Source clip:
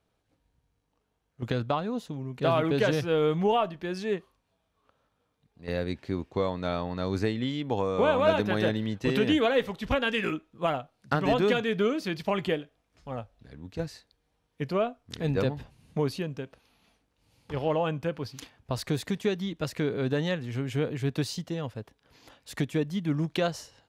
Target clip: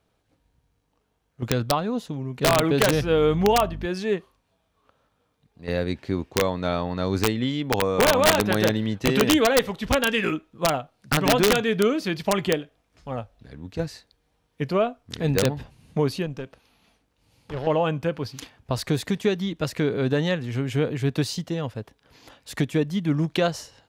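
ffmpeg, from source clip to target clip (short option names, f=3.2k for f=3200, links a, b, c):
-filter_complex "[0:a]aeval=exprs='(mod(5.96*val(0)+1,2)-1)/5.96':c=same,asettb=1/sr,asplit=3[a][b][c];[a]atrim=end=2.934[d];[b]atrim=start=2.93:end=3.86,asetpts=PTS-STARTPTS,afade=t=in:d=0.004:c=qsin,afade=t=out:st=0.926:d=0.004:c=qsin,aeval=exprs='val(0)+0.0126*(sin(2*PI*50*n/s)+sin(2*PI*2*50*n/s)/2+sin(2*PI*3*50*n/s)/3+sin(2*PI*4*50*n/s)/4+sin(2*PI*5*50*n/s)/5)':c=same[e];[c]atrim=start=3.856[f];[d][e]acrossfade=d=0.004:c1=hsin:c2=qsin[g];[g][f]acrossfade=d=0.004:c1=qsin:c2=hsin,asettb=1/sr,asplit=3[h][i][j];[h]atrim=end=16.264[k];[i]atrim=start=16.26:end=17.67,asetpts=PTS-STARTPTS,afade=t=in:d=0.004:c=qsin,afade=t=out:st=1.406:d=0.004:c=qsin,aeval=exprs='(tanh(31.6*val(0)+0.4)-tanh(0.4))/31.6':c=same[l];[j]atrim=start=17.666[m];[k][l]acrossfade=d=0.004:c1=hsin:c2=qsin[n];[n][m]acrossfade=d=0.004:c1=qsin:c2=hsin,volume=5dB"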